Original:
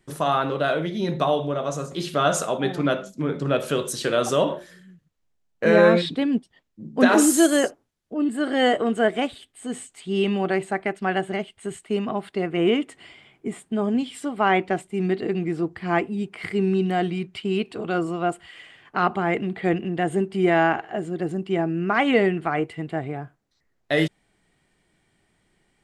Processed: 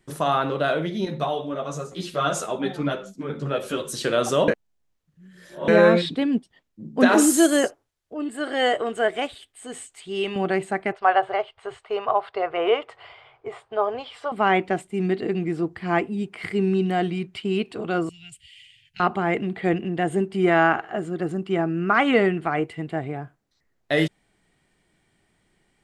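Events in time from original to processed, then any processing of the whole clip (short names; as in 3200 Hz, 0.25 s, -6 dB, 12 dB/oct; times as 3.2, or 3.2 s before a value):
1.05–3.93 ensemble effect
4.48–5.68 reverse
7.67–10.36 bell 210 Hz -12 dB 1 oct
10.92–14.32 EQ curve 130 Hz 0 dB, 180 Hz -27 dB, 300 Hz -17 dB, 450 Hz +4 dB, 770 Hz +9 dB, 1200 Hz +10 dB, 1800 Hz 0 dB, 4800 Hz -2 dB, 7300 Hz -15 dB, 12000 Hz -21 dB
18.09–19 elliptic band-stop 120–2600 Hz
20.41–22.32 bell 1300 Hz +7 dB 0.41 oct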